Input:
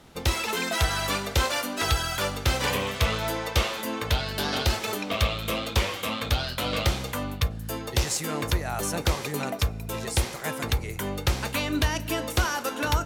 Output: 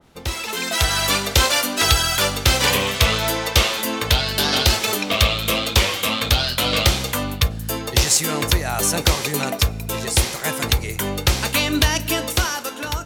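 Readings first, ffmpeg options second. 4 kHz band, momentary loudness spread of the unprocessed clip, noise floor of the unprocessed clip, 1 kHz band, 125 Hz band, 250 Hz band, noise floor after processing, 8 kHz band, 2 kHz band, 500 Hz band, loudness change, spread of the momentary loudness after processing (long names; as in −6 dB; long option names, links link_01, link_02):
+10.5 dB, 4 LU, −37 dBFS, +5.5 dB, +5.5 dB, +5.5 dB, −31 dBFS, +11.0 dB, +7.5 dB, +5.5 dB, +8.5 dB, 6 LU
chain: -af "dynaudnorm=framelen=120:gausssize=13:maxgain=10dB,adynamicequalizer=threshold=0.0251:dfrequency=2300:dqfactor=0.7:tfrequency=2300:tqfactor=0.7:attack=5:release=100:ratio=0.375:range=3:mode=boostabove:tftype=highshelf,volume=-2dB"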